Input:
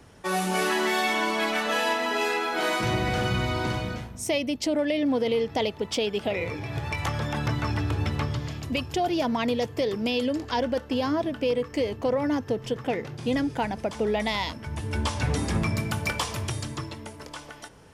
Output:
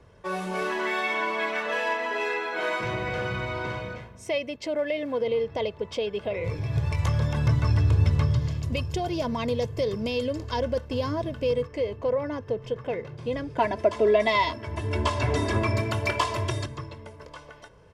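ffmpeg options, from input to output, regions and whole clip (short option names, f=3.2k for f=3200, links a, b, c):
-filter_complex "[0:a]asettb=1/sr,asplit=3[a][b][c];[a]atrim=end=0.794[d];[b]atrim=start=0.79:end=5.21,asetpts=PTS-STARTPTS,afade=t=in:d=0.004:c=qsin,afade=t=out:st=4.416:d=0.004:c=qsin,acrusher=bits=9:mode=log:mix=0:aa=0.000001,highpass=f=150:p=1,equalizer=f=2k:w=1:g=4[e];[c]atrim=start=5.206[f];[d][e]acrossfade=d=0.004:c1=hsin:c2=qsin[g];[g][f]acrossfade=d=0.004:c1=qsin:c2=hsin,asettb=1/sr,asplit=3[h][i][j];[h]atrim=end=6.444[k];[i]atrim=start=6.44:end=11.67,asetpts=PTS-STARTPTS,afade=t=in:d=0.004:c=qsin,afade=t=out:st=5.226:d=0.004:c=qsin,bass=f=250:g=9,treble=f=4k:g=12,aeval=exprs='sgn(val(0))*max(abs(val(0))-0.00422,0)':c=same[l];[j]atrim=start=11.666[m];[k][l]acrossfade=d=0.004:c1=hsin:c2=qsin[n];[n][m]acrossfade=d=0.004:c1=qsin:c2=hsin,asettb=1/sr,asplit=3[o][p][q];[o]atrim=end=13.584[r];[p]atrim=start=13.58:end=16.66,asetpts=PTS-STARTPTS,afade=t=in:d=0.004:c=qsin,afade=t=out:st=3.076:d=0.004:c=qsin,highpass=f=97:w=0.5412,highpass=f=97:w=1.3066,aecho=1:1:3:0.99,atrim=end_sample=135828,acontrast=29[s];[q]atrim=start=16.656[t];[r][s]acrossfade=d=0.004:c1=hsin:c2=qsin[u];[u][t]acrossfade=d=0.004:c1=qsin:c2=hsin,aemphasis=mode=reproduction:type=75kf,bandreject=f=1.6k:w=26,aecho=1:1:1.9:0.52,volume=-3dB"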